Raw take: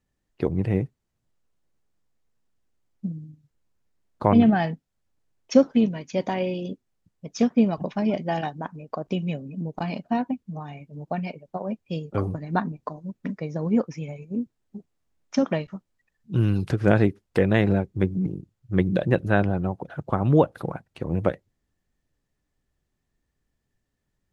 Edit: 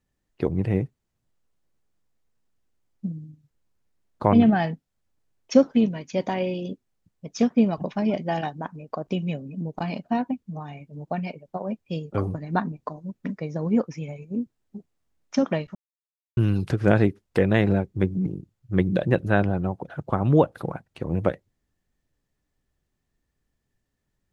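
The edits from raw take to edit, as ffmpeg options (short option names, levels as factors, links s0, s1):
-filter_complex "[0:a]asplit=3[s0][s1][s2];[s0]atrim=end=15.75,asetpts=PTS-STARTPTS,afade=t=out:st=15.746:d=0.004:c=hsin[s3];[s1]atrim=start=15.75:end=16.37,asetpts=PTS-STARTPTS,volume=0[s4];[s2]atrim=start=16.37,asetpts=PTS-STARTPTS,afade=t=in:d=0.004:c=hsin[s5];[s3][s4][s5]concat=n=3:v=0:a=1"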